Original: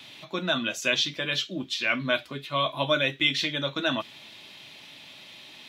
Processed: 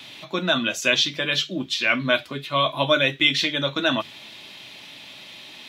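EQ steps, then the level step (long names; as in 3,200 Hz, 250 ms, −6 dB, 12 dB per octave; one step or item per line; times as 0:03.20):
mains-hum notches 50/100/150 Hz
+5.0 dB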